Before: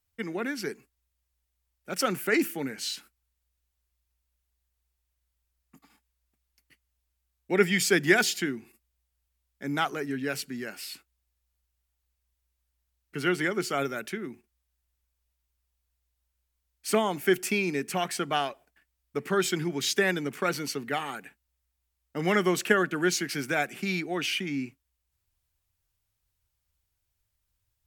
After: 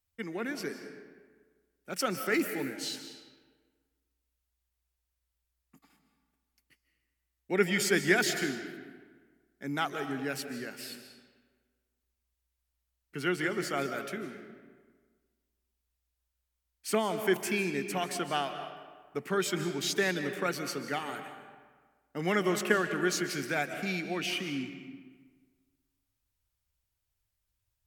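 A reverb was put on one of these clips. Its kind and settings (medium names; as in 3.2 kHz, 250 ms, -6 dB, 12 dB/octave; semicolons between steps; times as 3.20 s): algorithmic reverb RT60 1.5 s, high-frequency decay 0.65×, pre-delay 110 ms, DRR 8 dB; trim -4 dB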